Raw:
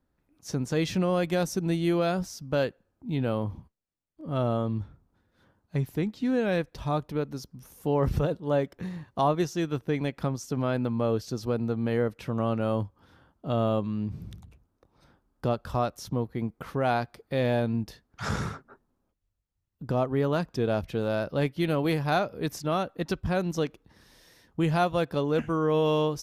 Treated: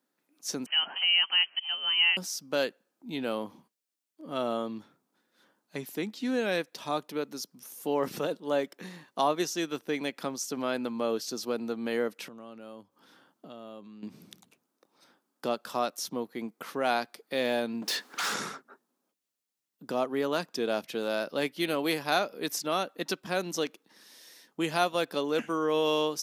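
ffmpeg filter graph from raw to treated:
ffmpeg -i in.wav -filter_complex "[0:a]asettb=1/sr,asplit=3[link_01][link_02][link_03];[link_01]atrim=end=0.664[link_04];[link_02]atrim=start=0.66:end=2.17,asetpts=PTS-STARTPTS,afade=type=in:duration=0.004:curve=qsin,afade=type=out:start_time=1.506:duration=0.004:curve=qsin,highpass=frequency=420:width=0.5412,highpass=frequency=420:width=1.3066,lowpass=frequency=2900:width_type=q:width=0.5098,lowpass=frequency=2900:width_type=q:width=0.6013,lowpass=frequency=2900:width_type=q:width=0.9,lowpass=frequency=2900:width_type=q:width=2.563,afreqshift=-3400[link_05];[link_03]atrim=start=2.166[link_06];[link_04][link_05]acrossfade=duration=0.004:curve1=hsin:curve2=qsin[link_07];[link_07][link_06]acrossfade=duration=0.004:curve1=qsin:curve2=hsin,asettb=1/sr,asplit=3[link_08][link_09][link_10];[link_08]atrim=end=12.284[link_11];[link_09]atrim=start=12.28:end=14.03,asetpts=PTS-STARTPTS,afade=type=in:duration=0.004:curve=qsin,afade=type=out:start_time=1.746:duration=0.004:curve=qsin,highpass=58,lowshelf=frequency=180:gain=8,acompressor=threshold=-40dB:ratio=4:attack=3.2:release=140:knee=1:detection=peak[link_12];[link_10]atrim=start=14.026[link_13];[link_11][link_12]acrossfade=duration=0.004:curve1=hsin:curve2=qsin[link_14];[link_14][link_13]acrossfade=duration=0.004:curve1=qsin:curve2=hsin,asettb=1/sr,asplit=3[link_15][link_16][link_17];[link_15]atrim=end=17.824[link_18];[link_16]atrim=start=17.82:end=18.34,asetpts=PTS-STARTPTS,afade=type=in:duration=0.004:curve=qsin,afade=type=out:start_time=0.516:duration=0.004:curve=qsin,bandreject=frequency=650:width=8.2,acompressor=threshold=-41dB:ratio=2.5:attack=3.2:release=140:knee=1:detection=peak,asplit=2[link_19][link_20];[link_20]highpass=frequency=720:poles=1,volume=34dB,asoftclip=type=tanh:threshold=-24.5dB[link_21];[link_19][link_21]amix=inputs=2:normalize=0,lowpass=frequency=4100:poles=1,volume=-6dB[link_22];[link_17]atrim=start=18.336[link_23];[link_18][link_22]acrossfade=duration=0.004:curve1=hsin:curve2=qsin[link_24];[link_24][link_23]acrossfade=duration=0.004:curve1=qsin:curve2=hsin,highpass=frequency=220:width=0.5412,highpass=frequency=220:width=1.3066,highshelf=frequency=2200:gain=11,volume=-3dB" out.wav

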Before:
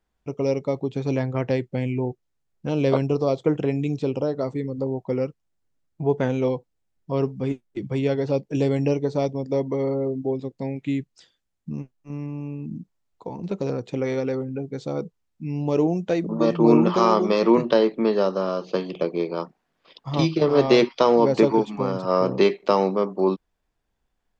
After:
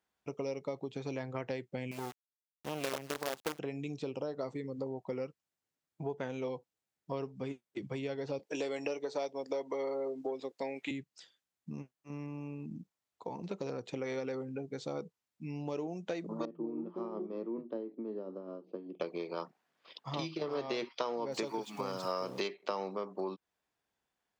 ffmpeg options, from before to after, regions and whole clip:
ffmpeg -i in.wav -filter_complex "[0:a]asettb=1/sr,asplit=3[link_01][link_02][link_03];[link_01]atrim=end=1.914[link_04];[link_02]atrim=start=1.91:end=3.59,asetpts=PTS-STARTPTS,afade=type=in:duration=0.004:curve=qsin,afade=type=out:start_time=1.676:duration=0.004:curve=qsin,lowshelf=frequency=160:gain=-8,acrusher=bits=4:dc=4:mix=0:aa=0.000001[link_05];[link_03]atrim=start=3.586[link_06];[link_04][link_05]acrossfade=duration=0.004:curve1=hsin:curve2=qsin[link_07];[link_07][link_06]acrossfade=duration=0.004:curve1=qsin:curve2=hsin,asettb=1/sr,asplit=3[link_08][link_09][link_10];[link_08]atrim=end=8.394[link_11];[link_09]atrim=start=8.39:end=10.91,asetpts=PTS-STARTPTS,afade=type=in:duration=0.004:curve=qsin,afade=type=out:start_time=2.516:duration=0.004:curve=qsin,acontrast=84,highpass=430[link_12];[link_10]atrim=start=10.906[link_13];[link_11][link_12]acrossfade=duration=0.004:curve1=hsin:curve2=qsin[link_14];[link_14][link_13]acrossfade=duration=0.004:curve1=qsin:curve2=hsin,asettb=1/sr,asplit=3[link_15][link_16][link_17];[link_15]atrim=end=16.454[link_18];[link_16]atrim=start=16.45:end=19,asetpts=PTS-STARTPTS,afade=type=in:duration=0.004:curve=qsin,afade=type=out:start_time=2.546:duration=0.004:curve=qsin,bandpass=frequency=280:width_type=q:width=2.7,tremolo=f=5.3:d=0.52[link_19];[link_17]atrim=start=18.996[link_20];[link_18][link_19]acrossfade=duration=0.004:curve1=hsin:curve2=qsin[link_21];[link_21][link_20]acrossfade=duration=0.004:curve1=qsin:curve2=hsin,asettb=1/sr,asplit=3[link_22][link_23][link_24];[link_22]atrim=end=21.324[link_25];[link_23]atrim=start=21.32:end=22.48,asetpts=PTS-STARTPTS,afade=type=in:duration=0.004:curve=qsin,afade=type=out:start_time=1.156:duration=0.004:curve=qsin,aemphasis=mode=production:type=75kf,aeval=exprs='val(0)*gte(abs(val(0)),0.00794)':channel_layout=same[link_26];[link_24]atrim=start=22.476[link_27];[link_25][link_26]acrossfade=duration=0.004:curve1=hsin:curve2=qsin[link_28];[link_28][link_27]acrossfade=duration=0.004:curve1=qsin:curve2=hsin,highpass=100,acompressor=threshold=-27dB:ratio=6,lowshelf=frequency=430:gain=-9,volume=-2.5dB" out.wav

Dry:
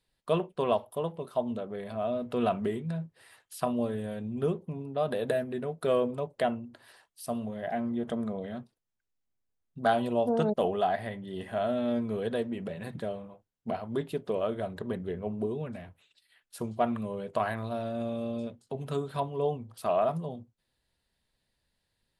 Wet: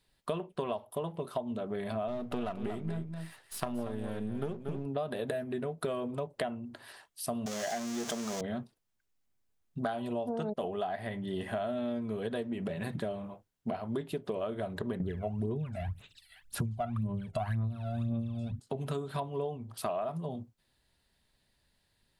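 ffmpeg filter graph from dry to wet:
ffmpeg -i in.wav -filter_complex "[0:a]asettb=1/sr,asplit=3[link_01][link_02][link_03];[link_01]atrim=end=2.084[link_04];[link_02]atrim=start=2.08:end=4.86,asetpts=PTS-STARTPTS,afade=type=in:duration=0.004:curve=qsin,afade=type=out:start_time=2.776:duration=0.004:curve=qsin,aeval=exprs='if(lt(val(0),0),0.447*val(0),val(0))':channel_layout=same,aecho=1:1:233:0.316,atrim=end_sample=122598[link_05];[link_03]atrim=start=4.856[link_06];[link_04][link_05]acrossfade=duration=0.004:curve1=hsin:curve2=qsin[link_07];[link_07][link_06]acrossfade=duration=0.004:curve1=qsin:curve2=hsin,asettb=1/sr,asplit=3[link_08][link_09][link_10];[link_08]atrim=end=7.464[link_11];[link_09]atrim=start=7.46:end=8.41,asetpts=PTS-STARTPTS,afade=type=in:duration=0.004:curve=qsin,afade=type=out:start_time=0.946:duration=0.004:curve=qsin,aeval=exprs='val(0)+0.5*0.0178*sgn(val(0))':channel_layout=same,highpass=frequency=440:poles=1,equalizer=frequency=6300:width_type=o:width=0.92:gain=15[link_12];[link_10]atrim=start=8.406[link_13];[link_11][link_12]acrossfade=duration=0.004:curve1=hsin:curve2=qsin[link_14];[link_14][link_13]acrossfade=duration=0.004:curve1=qsin:curve2=hsin,asettb=1/sr,asplit=3[link_15][link_16][link_17];[link_15]atrim=end=15.004[link_18];[link_16]atrim=start=15:end=18.6,asetpts=PTS-STARTPTS,afade=type=in:duration=0.004:curve=qsin,afade=type=out:start_time=3.596:duration=0.004:curve=qsin,asubboost=boost=10.5:cutoff=160,aphaser=in_gain=1:out_gain=1:delay=1.5:decay=0.74:speed=1.9:type=sinusoidal[link_19];[link_17]atrim=start=18.596[link_20];[link_18][link_19]acrossfade=duration=0.004:curve1=hsin:curve2=qsin[link_21];[link_21][link_20]acrossfade=duration=0.004:curve1=qsin:curve2=hsin,bandreject=frequency=500:width=12,acompressor=threshold=-36dB:ratio=10,volume=5dB" out.wav

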